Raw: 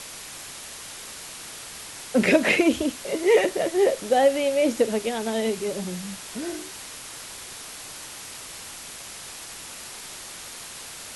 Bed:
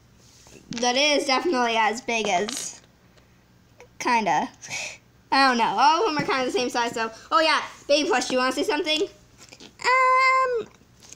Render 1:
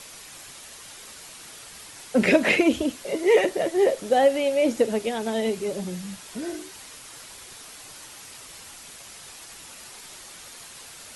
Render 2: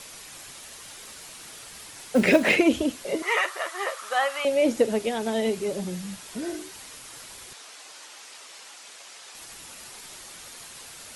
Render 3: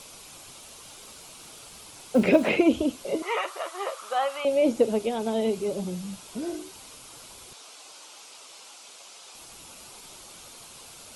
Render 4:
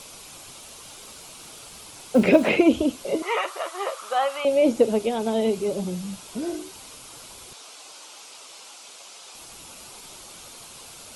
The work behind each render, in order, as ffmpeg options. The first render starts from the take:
-af "afftdn=nr=6:nf=-40"
-filter_complex "[0:a]asettb=1/sr,asplit=3[a][b][c];[a]atrim=end=0.564[d];[b]atrim=start=0.56:end=2.56,asetpts=PTS-STARTPTS,afade=t=in:d=0.004:c=qsin,afade=t=out:st=1.996:d=0.004:c=qsin,acrusher=bits=7:mode=log:mix=0:aa=0.000001[e];[c]atrim=start=2.556[f];[d][e]acrossfade=d=0.004:c1=hsin:c2=qsin[g];[g][f]acrossfade=d=0.004:c1=qsin:c2=hsin,asettb=1/sr,asplit=3[h][i][j];[h]atrim=end=3.224[k];[i]atrim=start=3.22:end=4.45,asetpts=PTS-STARTPTS,afade=t=in:d=0.004:c=qsin,afade=t=out:st=1.226:d=0.004:c=qsin,highpass=f=1.2k:t=q:w=6.7[l];[j]atrim=start=4.446[m];[k][l]acrossfade=d=0.004:c1=hsin:c2=qsin[n];[n][m]acrossfade=d=0.004:c1=qsin:c2=hsin,asettb=1/sr,asplit=3[o][p][q];[o]atrim=end=7.534[r];[p]atrim=start=7.53:end=9.35,asetpts=PTS-STARTPTS,afade=t=in:d=0.004:c=qsin,afade=t=out:st=1.816:d=0.004:c=qsin,highpass=440,lowpass=7.9k[s];[q]atrim=start=9.346[t];[r][s]acrossfade=d=0.004:c1=hsin:c2=qsin[u];[u][t]acrossfade=d=0.004:c1=qsin:c2=hsin"
-filter_complex "[0:a]equalizer=f=1.8k:t=o:w=0.47:g=-12,acrossover=split=2900[a][b];[b]acompressor=threshold=-43dB:ratio=4:attack=1:release=60[c];[a][c]amix=inputs=2:normalize=0"
-af "volume=3dB"

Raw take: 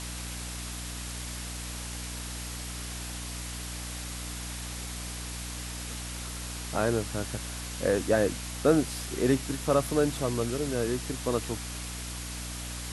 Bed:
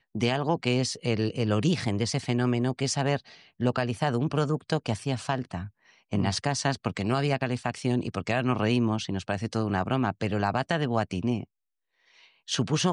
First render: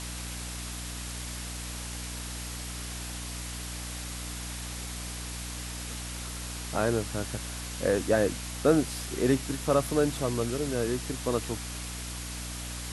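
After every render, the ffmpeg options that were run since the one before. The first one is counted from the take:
-af anull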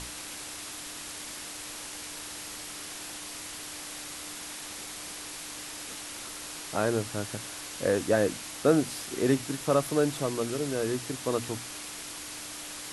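-af "bandreject=f=60:t=h:w=6,bandreject=f=120:t=h:w=6,bandreject=f=180:t=h:w=6,bandreject=f=240:t=h:w=6"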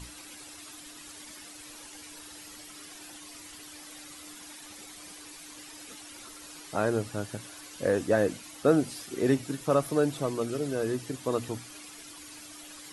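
-af "afftdn=nr=11:nf=-41"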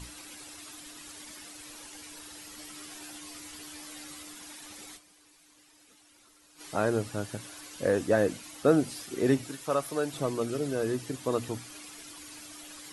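-filter_complex "[0:a]asettb=1/sr,asplit=3[a][b][c];[a]atrim=end=2.564[d];[b]atrim=start=2.56:end=4.23,asetpts=PTS-STARTPTS,afade=t=in:d=0.004:c=qsin,afade=t=out:st=1.666:d=0.004:c=qsin,asplit=2[e][f];[f]adelay=13,volume=-4.5dB[g];[e][g]amix=inputs=2:normalize=0,atrim=end_sample=73647[h];[c]atrim=start=4.226[i];[d][h]acrossfade=d=0.004:c1=hsin:c2=qsin[j];[j][i]acrossfade=d=0.004:c1=qsin:c2=hsin,asettb=1/sr,asplit=3[k][l][m];[k]atrim=end=9.484[n];[l]atrim=start=9.48:end=10.14,asetpts=PTS-STARTPTS,afade=t=in:d=0.004:c=qsin,afade=t=out:st=0.656:d=0.004:c=qsin,lowshelf=f=420:g=-10.5[o];[m]atrim=start=10.136[p];[n][o]acrossfade=d=0.004:c1=hsin:c2=qsin[q];[q][p]acrossfade=d=0.004:c1=qsin:c2=hsin,asplit=3[r][s][t];[r]atrim=end=5.14,asetpts=PTS-STARTPTS,afade=t=out:st=4.96:d=0.18:c=exp:silence=0.199526[u];[s]atrim=start=5.14:end=6.43,asetpts=PTS-STARTPTS,volume=-14dB[v];[t]atrim=start=6.43,asetpts=PTS-STARTPTS,afade=t=in:d=0.18:c=exp:silence=0.199526[w];[u][v][w]concat=n=3:v=0:a=1"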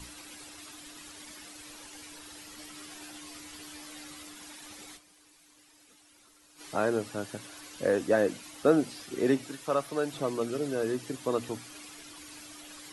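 -filter_complex "[0:a]acrossover=split=170|5400[a][b][c];[a]acompressor=threshold=-49dB:ratio=6[d];[c]alimiter=level_in=18.5dB:limit=-24dB:level=0:latency=1:release=234,volume=-18.5dB[e];[d][b][e]amix=inputs=3:normalize=0"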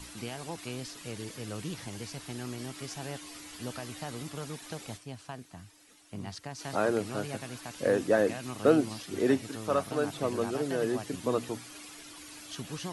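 -filter_complex "[1:a]volume=-14dB[a];[0:a][a]amix=inputs=2:normalize=0"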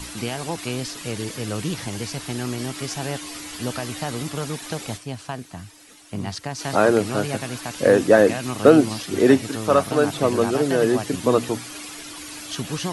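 -af "volume=11dB,alimiter=limit=-1dB:level=0:latency=1"

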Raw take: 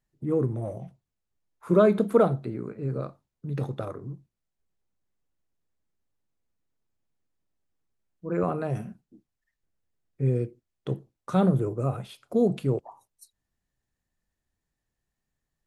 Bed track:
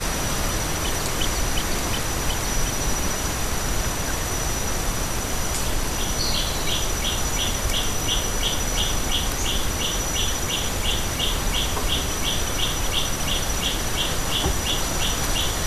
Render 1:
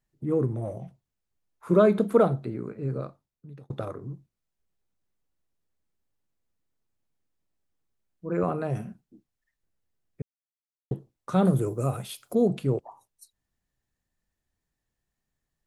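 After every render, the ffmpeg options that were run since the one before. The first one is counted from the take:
-filter_complex "[0:a]asettb=1/sr,asplit=3[a][b][c];[a]atrim=end=11.454[d];[b]atrim=start=11.45:end=12.35,asetpts=PTS-STARTPTS,afade=t=in:d=0.004:c=qsin,afade=t=out:st=0.896:d=0.004:c=qsin,aemphasis=mode=production:type=75kf[e];[c]atrim=start=12.346[f];[d][e]acrossfade=d=0.004:c1=hsin:c2=qsin[g];[g][f]acrossfade=d=0.004:c1=qsin:c2=hsin,asplit=4[h][i][j][k];[h]atrim=end=3.7,asetpts=PTS-STARTPTS,afade=t=out:st=2.9:d=0.8[l];[i]atrim=start=3.7:end=10.22,asetpts=PTS-STARTPTS,afade=t=in:d=0.004:c=hsin,afade=t=out:st=6.516:d=0.004:c=hsin[m];[j]atrim=start=10.22:end=10.91,asetpts=PTS-STARTPTS,volume=0[n];[k]atrim=start=10.91,asetpts=PTS-STARTPTS,afade=t=in:d=0.004:c=hsin[o];[l][m][n][o]concat=n=4:v=0:a=1"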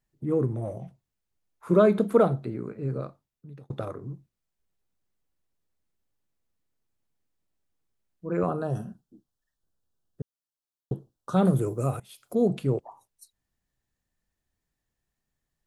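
-filter_complex "[0:a]asettb=1/sr,asplit=3[a][b][c];[a]atrim=end=8.474[d];[b]atrim=start=8.47:end=11.37,asetpts=PTS-STARTPTS,afade=t=in:d=0.004:c=qsin,afade=t=out:st=2.896:d=0.004:c=qsin,asuperstop=centerf=2200:order=4:qfactor=1.7[e];[c]atrim=start=11.366[f];[d][e]acrossfade=d=0.004:c1=hsin:c2=qsin[g];[g][f]acrossfade=d=0.004:c1=qsin:c2=hsin,asplit=2[h][i];[h]atrim=end=12,asetpts=PTS-STARTPTS,afade=t=out:st=11.996:d=0.004:c=hsin:silence=0.0841395[j];[i]atrim=start=12,asetpts=PTS-STARTPTS,afade=t=in:d=0.46:silence=0.0841395[k];[j][k]concat=n=2:v=0:a=1"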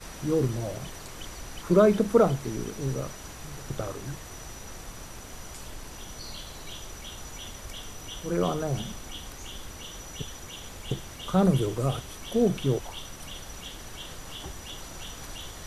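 -filter_complex "[1:a]volume=-17dB[a];[0:a][a]amix=inputs=2:normalize=0"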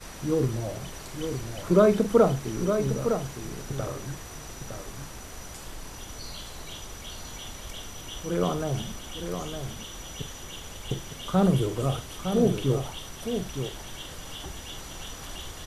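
-filter_complex "[0:a]asplit=2[a][b];[b]adelay=45,volume=-12.5dB[c];[a][c]amix=inputs=2:normalize=0,aecho=1:1:910:0.422"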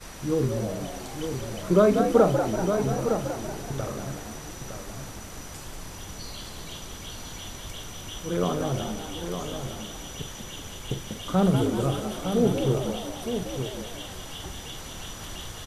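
-filter_complex "[0:a]asplit=7[a][b][c][d][e][f][g];[b]adelay=191,afreqshift=79,volume=-7.5dB[h];[c]adelay=382,afreqshift=158,volume=-13.3dB[i];[d]adelay=573,afreqshift=237,volume=-19.2dB[j];[e]adelay=764,afreqshift=316,volume=-25dB[k];[f]adelay=955,afreqshift=395,volume=-30.9dB[l];[g]adelay=1146,afreqshift=474,volume=-36.7dB[m];[a][h][i][j][k][l][m]amix=inputs=7:normalize=0"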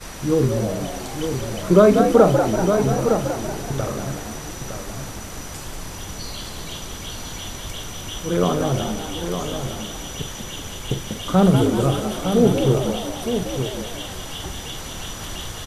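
-af "volume=6.5dB,alimiter=limit=-2dB:level=0:latency=1"

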